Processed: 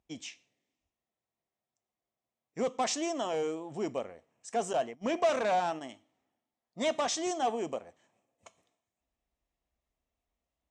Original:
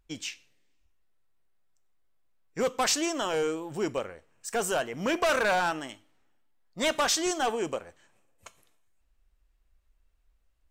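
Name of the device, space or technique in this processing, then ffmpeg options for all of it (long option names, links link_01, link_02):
car door speaker: -filter_complex "[0:a]highpass=98,equalizer=frequency=240:width_type=q:width=4:gain=5,equalizer=frequency=690:width_type=q:width=4:gain=7,equalizer=frequency=1500:width_type=q:width=4:gain=-9,equalizer=frequency=2700:width_type=q:width=4:gain=-3,equalizer=frequency=4500:width_type=q:width=4:gain=-6,lowpass=frequency=7500:width=0.5412,lowpass=frequency=7500:width=1.3066,asettb=1/sr,asplit=3[link_01][link_02][link_03];[link_01]atrim=end=4.734[link_04];[link_02]atrim=start=4.73:end=5.81,asetpts=PTS-STARTPTS,afade=type=in:duration=0.004:curve=qsin,afade=type=out:start_time=1.076:duration=0.004:curve=qsin,agate=range=-24dB:threshold=-32dB:ratio=16:detection=peak[link_05];[link_03]atrim=start=5.806[link_06];[link_04][link_05]acrossfade=duration=0.004:curve1=hsin:curve2=qsin[link_07];[link_07][link_06]acrossfade=duration=0.004:curve1=qsin:curve2=hsin,volume=-5dB"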